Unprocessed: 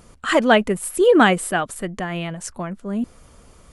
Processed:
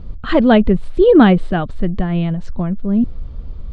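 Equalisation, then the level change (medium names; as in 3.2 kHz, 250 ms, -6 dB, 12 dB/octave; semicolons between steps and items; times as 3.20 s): resonant low-pass 4 kHz, resonance Q 3.7; tilt EQ -4.5 dB/octave; bass shelf 160 Hz +4.5 dB; -2.0 dB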